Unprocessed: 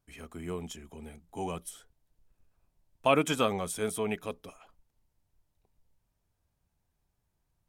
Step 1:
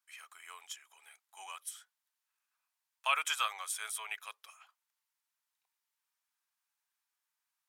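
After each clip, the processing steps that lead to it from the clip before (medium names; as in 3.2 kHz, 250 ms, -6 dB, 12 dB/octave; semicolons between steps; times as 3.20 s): high-pass 1.1 kHz 24 dB/octave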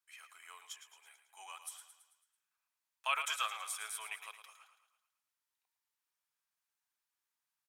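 feedback delay 110 ms, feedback 52%, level -10.5 dB; trim -3.5 dB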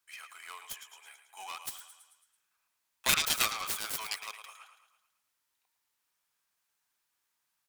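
self-modulated delay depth 0.63 ms; trim +8.5 dB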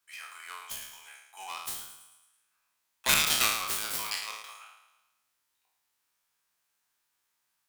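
spectral sustain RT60 0.78 s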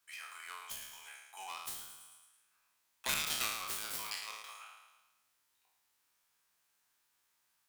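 compression 1.5:1, threshold -53 dBFS, peak gain reduction 12.5 dB; trim +1 dB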